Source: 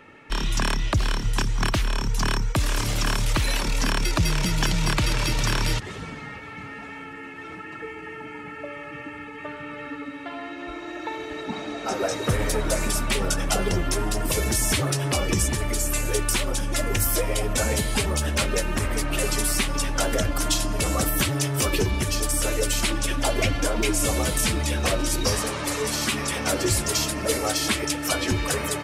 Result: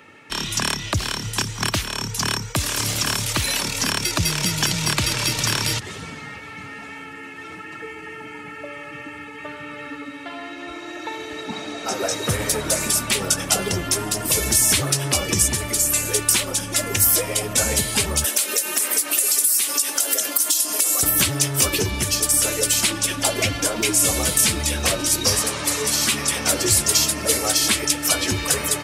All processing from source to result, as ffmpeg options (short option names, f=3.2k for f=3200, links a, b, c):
-filter_complex "[0:a]asettb=1/sr,asplit=3[a][b][c];[a]atrim=end=18.244[d];[b]atrim=start=18.24:end=21.03,asetpts=PTS-STARTPTS,afade=t=in:d=0.004:c=qsin,afade=t=out:st=2.786:d=0.004:c=qsin,highpass=f=280:w=0.5412,highpass=f=280:w=1.3066,aemphasis=mode=production:type=75fm,acompressor=threshold=-23dB:ratio=10:attack=3.2:release=140:knee=1:detection=peak[e];[c]atrim=start=21.026[f];[d][e]acrossfade=d=0.004:c1=hsin:c2=qsin[g];[g][f]acrossfade=d=0.004:c1=qsin:c2=hsin,highpass=f=64:w=0.5412,highpass=f=64:w=1.3066,highshelf=f=3.3k:g=10"